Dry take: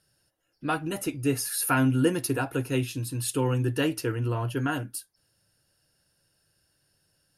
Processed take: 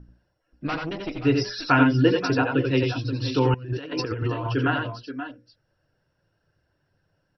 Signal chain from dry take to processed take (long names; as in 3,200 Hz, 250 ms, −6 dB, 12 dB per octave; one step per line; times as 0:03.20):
reverb reduction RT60 0.85 s
mains hum 60 Hz, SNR 18 dB
low-pass that shuts in the quiet parts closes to 1,300 Hz, open at −24 dBFS
low-pass filter 8,500 Hz 12 dB per octave
mains-hum notches 60/120/180/240/300/360/420/480/540 Hz
0:00.67–0:01.23: tube saturation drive 30 dB, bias 0.75
multi-tap delay 78/86/88/527/531/534 ms −13.5/−15/−5/−17/−13.5/−18.5 dB
0:03.54–0:04.47: compressor whose output falls as the input rises −33 dBFS, ratio −0.5
level +5.5 dB
MP2 48 kbit/s 22,050 Hz